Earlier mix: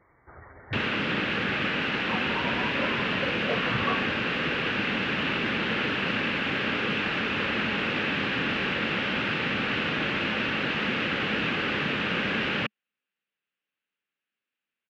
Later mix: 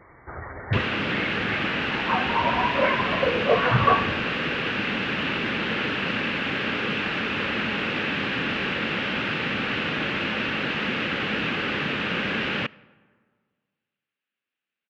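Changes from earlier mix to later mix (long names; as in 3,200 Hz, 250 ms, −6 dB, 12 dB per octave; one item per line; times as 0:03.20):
speech +9.0 dB
reverb: on, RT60 1.8 s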